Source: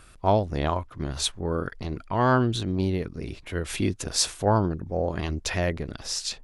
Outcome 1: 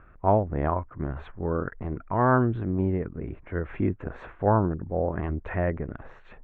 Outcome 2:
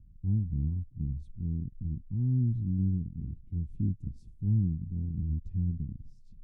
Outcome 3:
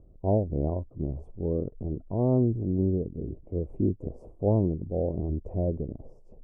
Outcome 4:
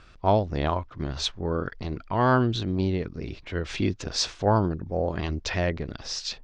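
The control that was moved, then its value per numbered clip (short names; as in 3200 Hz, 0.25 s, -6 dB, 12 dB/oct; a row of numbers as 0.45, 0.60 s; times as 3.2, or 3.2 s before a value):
inverse Chebyshev low-pass, stop band from: 4600, 530, 1500, 12000 Hz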